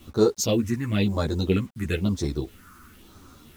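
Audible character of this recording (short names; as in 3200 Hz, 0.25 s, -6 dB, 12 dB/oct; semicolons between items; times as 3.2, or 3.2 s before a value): phasing stages 4, 1 Hz, lowest notch 590–2700 Hz; a quantiser's noise floor 10-bit, dither none; a shimmering, thickened sound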